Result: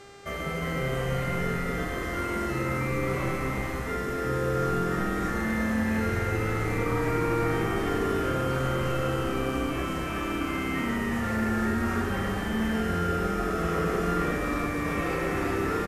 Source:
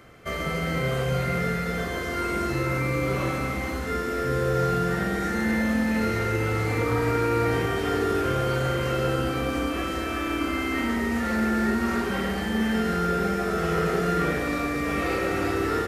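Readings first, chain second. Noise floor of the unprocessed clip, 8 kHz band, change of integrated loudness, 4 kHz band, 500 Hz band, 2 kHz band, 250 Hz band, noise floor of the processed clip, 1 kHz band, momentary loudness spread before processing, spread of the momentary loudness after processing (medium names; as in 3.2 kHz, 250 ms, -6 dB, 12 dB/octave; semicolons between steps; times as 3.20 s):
-29 dBFS, -2.5 dB, -2.5 dB, -4.5 dB, -3.0 dB, -3.0 dB, -2.5 dB, -32 dBFS, -2.5 dB, 4 LU, 4 LU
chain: peaking EQ 4.3 kHz -6.5 dB 0.54 oct; frequency-shifting echo 351 ms, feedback 46%, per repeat -130 Hz, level -6 dB; mains buzz 400 Hz, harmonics 22, -46 dBFS -5 dB/octave; trim -3.5 dB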